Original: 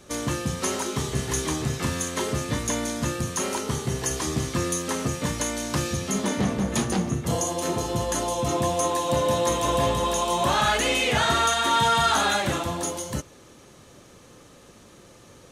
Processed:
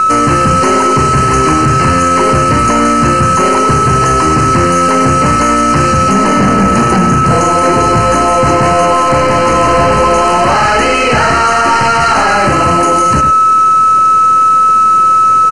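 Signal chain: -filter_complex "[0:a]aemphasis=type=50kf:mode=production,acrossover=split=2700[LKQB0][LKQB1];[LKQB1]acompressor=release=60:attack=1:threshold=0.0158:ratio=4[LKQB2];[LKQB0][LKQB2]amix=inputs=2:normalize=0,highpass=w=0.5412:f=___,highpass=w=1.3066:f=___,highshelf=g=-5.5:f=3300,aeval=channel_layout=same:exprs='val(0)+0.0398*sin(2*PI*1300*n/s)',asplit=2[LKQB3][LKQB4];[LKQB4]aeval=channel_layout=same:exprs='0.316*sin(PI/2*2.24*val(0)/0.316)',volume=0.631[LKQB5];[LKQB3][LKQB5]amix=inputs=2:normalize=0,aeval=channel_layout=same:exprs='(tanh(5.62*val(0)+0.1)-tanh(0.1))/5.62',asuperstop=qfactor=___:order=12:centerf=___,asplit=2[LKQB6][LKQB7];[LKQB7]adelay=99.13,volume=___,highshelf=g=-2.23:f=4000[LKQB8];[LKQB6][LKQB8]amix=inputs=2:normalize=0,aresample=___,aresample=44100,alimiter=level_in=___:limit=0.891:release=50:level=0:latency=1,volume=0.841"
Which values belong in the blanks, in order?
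58, 58, 3.9, 3500, 0.355, 22050, 5.31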